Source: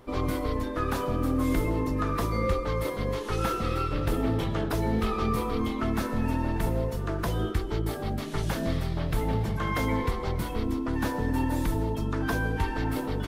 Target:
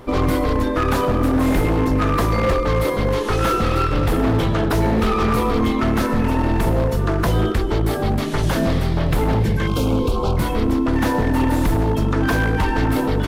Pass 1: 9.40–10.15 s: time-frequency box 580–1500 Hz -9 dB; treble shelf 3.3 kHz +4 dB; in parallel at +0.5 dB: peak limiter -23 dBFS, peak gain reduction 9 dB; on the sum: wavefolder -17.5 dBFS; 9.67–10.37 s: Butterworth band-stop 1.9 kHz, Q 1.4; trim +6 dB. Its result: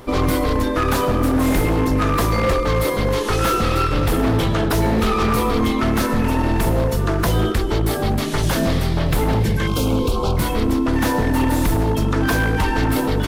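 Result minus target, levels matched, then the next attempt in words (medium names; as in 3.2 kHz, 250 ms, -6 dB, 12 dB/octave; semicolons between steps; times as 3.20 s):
8 kHz band +5.5 dB
9.40–10.15 s: time-frequency box 580–1500 Hz -9 dB; treble shelf 3.3 kHz -3 dB; in parallel at +0.5 dB: peak limiter -23 dBFS, peak gain reduction 8.5 dB; on the sum: wavefolder -17.5 dBFS; 9.67–10.37 s: Butterworth band-stop 1.9 kHz, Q 1.4; trim +6 dB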